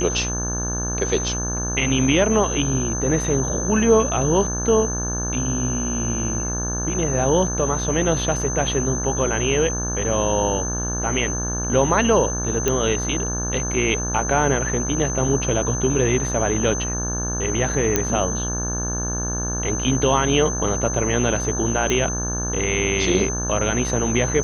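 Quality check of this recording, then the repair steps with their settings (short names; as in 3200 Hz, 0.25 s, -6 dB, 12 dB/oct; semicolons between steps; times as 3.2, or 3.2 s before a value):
buzz 60 Hz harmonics 29 -27 dBFS
tone 6200 Hz -26 dBFS
12.68 pop -6 dBFS
17.96 pop -3 dBFS
21.9 pop -8 dBFS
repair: de-click; de-hum 60 Hz, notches 29; notch 6200 Hz, Q 30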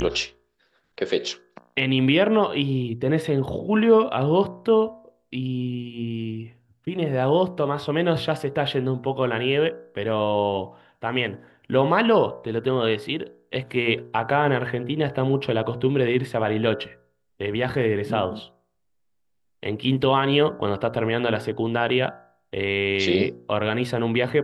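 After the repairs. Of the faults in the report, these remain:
none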